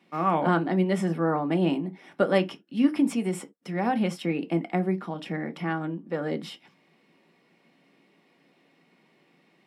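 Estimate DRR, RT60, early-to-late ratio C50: 6.5 dB, no single decay rate, 24.0 dB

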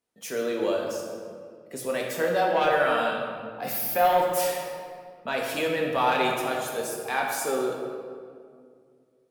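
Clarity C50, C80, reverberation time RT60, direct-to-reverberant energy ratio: 2.0 dB, 3.5 dB, 2.1 s, -1.0 dB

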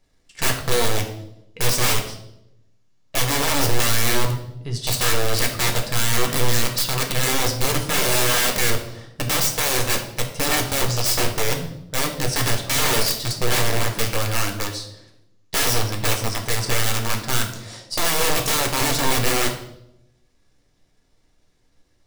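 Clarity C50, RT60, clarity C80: 8.5 dB, 0.85 s, 11.5 dB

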